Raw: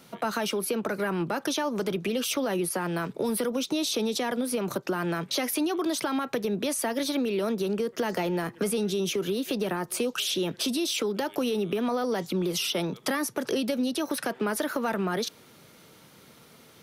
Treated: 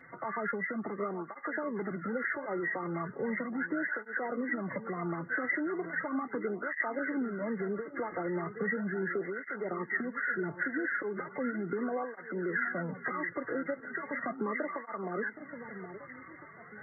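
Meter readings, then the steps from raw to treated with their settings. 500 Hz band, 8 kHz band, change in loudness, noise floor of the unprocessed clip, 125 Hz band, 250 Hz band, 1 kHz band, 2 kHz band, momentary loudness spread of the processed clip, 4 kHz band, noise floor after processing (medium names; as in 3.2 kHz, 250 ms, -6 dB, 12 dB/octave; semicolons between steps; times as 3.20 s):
-7.5 dB, under -40 dB, -6.5 dB, -54 dBFS, -7.0 dB, -7.5 dB, -5.0 dB, +2.5 dB, 6 LU, under -40 dB, -51 dBFS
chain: knee-point frequency compression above 1.1 kHz 4:1; echo whose repeats swap between lows and highs 769 ms, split 940 Hz, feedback 62%, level -13.5 dB; in parallel at 0 dB: compression, threshold -35 dBFS, peak gain reduction 15.5 dB; on the sum: cancelling through-zero flanger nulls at 0.37 Hz, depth 5.1 ms; trim -7 dB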